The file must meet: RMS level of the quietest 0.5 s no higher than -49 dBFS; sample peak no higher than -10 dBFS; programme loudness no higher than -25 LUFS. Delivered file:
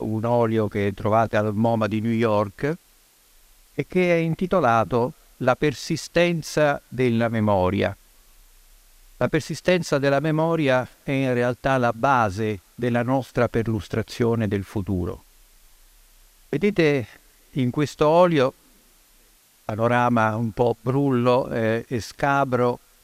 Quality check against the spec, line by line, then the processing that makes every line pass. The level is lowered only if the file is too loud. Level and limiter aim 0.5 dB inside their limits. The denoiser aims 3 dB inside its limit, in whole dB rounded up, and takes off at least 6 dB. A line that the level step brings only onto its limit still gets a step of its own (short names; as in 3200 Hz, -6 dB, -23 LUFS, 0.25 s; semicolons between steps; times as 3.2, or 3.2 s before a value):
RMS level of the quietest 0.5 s -57 dBFS: OK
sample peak -4.5 dBFS: fail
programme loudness -22.5 LUFS: fail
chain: gain -3 dB; limiter -10.5 dBFS